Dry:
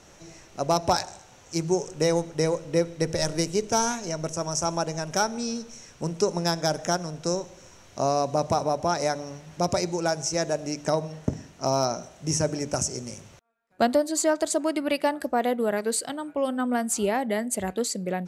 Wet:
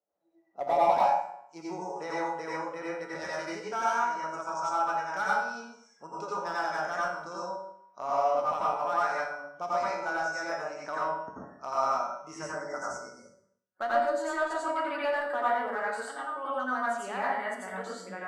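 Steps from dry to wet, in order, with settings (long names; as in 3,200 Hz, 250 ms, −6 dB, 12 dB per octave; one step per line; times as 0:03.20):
noise reduction from a noise print of the clip's start 29 dB
band-pass filter sweep 590 Hz → 1,300 Hz, 0:00.02–0:02.25
in parallel at −9 dB: wave folding −26.5 dBFS
on the sum: tuned comb filter 64 Hz, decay 0.62 s, harmonics odd, mix 80%
time-frequency box erased 0:12.43–0:13.81, 2,200–4,500 Hz
dense smooth reverb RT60 0.64 s, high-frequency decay 0.5×, pre-delay 75 ms, DRR −6.5 dB
level +6.5 dB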